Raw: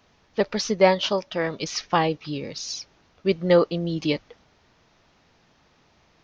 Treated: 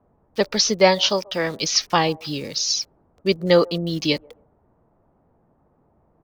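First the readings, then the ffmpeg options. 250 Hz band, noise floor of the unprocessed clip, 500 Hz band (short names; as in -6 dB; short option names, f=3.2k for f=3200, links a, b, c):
+1.5 dB, -62 dBFS, +1.5 dB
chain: -filter_complex "[0:a]equalizer=f=5.4k:t=o:w=1.6:g=9.5,acrossover=split=420|1000[a][b][c];[b]aecho=1:1:136|272:0.106|0.0275[d];[c]aeval=exprs='val(0)*gte(abs(val(0)),0.00562)':c=same[e];[a][d][e]amix=inputs=3:normalize=0,volume=1.5dB"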